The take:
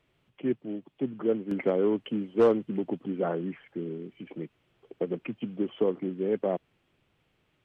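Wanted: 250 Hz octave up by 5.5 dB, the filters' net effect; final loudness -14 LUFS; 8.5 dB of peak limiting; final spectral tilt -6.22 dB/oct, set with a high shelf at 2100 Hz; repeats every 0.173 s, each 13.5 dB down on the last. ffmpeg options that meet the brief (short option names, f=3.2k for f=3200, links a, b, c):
-af "equalizer=f=250:t=o:g=7,highshelf=f=2.1k:g=8,alimiter=limit=-18dB:level=0:latency=1,aecho=1:1:173|346:0.211|0.0444,volume=15.5dB"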